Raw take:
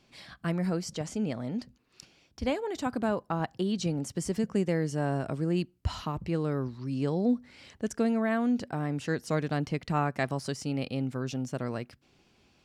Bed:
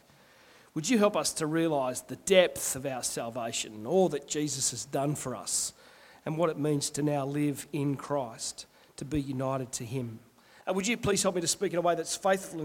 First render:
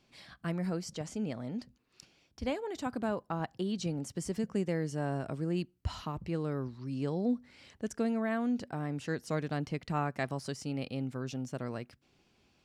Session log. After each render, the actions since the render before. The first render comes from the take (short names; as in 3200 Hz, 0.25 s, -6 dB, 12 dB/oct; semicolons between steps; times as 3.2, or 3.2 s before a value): gain -4.5 dB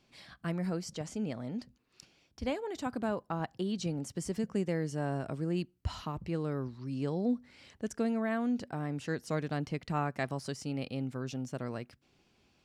nothing audible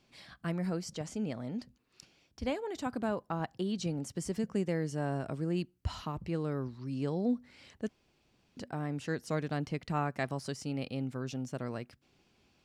7.89–8.57 room tone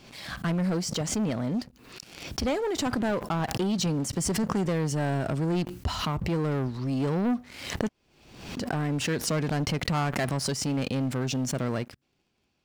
sample leveller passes 3; backwards sustainer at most 67 dB/s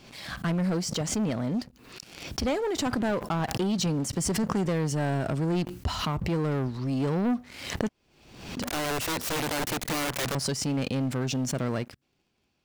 8.62–10.35 wrapped overs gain 25 dB